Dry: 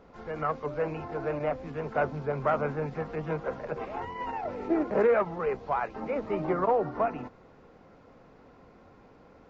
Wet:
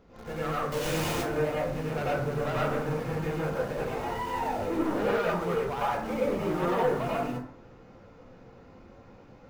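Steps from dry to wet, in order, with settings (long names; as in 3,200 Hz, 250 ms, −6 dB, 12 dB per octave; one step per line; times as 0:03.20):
0:00.72–0:01.13: sign of each sample alone
parametric band 870 Hz −7 dB 2.8 octaves
in parallel at −8 dB: bit reduction 7 bits
on the sum: soft clipping −30.5 dBFS, distortion −9 dB
dense smooth reverb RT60 0.53 s, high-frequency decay 0.5×, pre-delay 80 ms, DRR −6.5 dB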